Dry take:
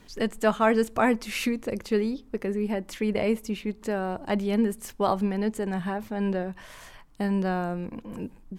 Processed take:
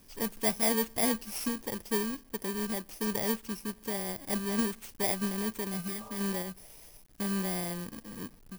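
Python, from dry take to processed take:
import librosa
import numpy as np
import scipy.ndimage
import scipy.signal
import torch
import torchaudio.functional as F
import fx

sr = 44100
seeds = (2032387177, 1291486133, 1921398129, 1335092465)

y = fx.bit_reversed(x, sr, seeds[0], block=32)
y = fx.quant_companded(y, sr, bits=4)
y = fx.spec_repair(y, sr, seeds[1], start_s=5.9, length_s=0.26, low_hz=430.0, high_hz=1400.0, source='both')
y = y * 10.0 ** (-6.5 / 20.0)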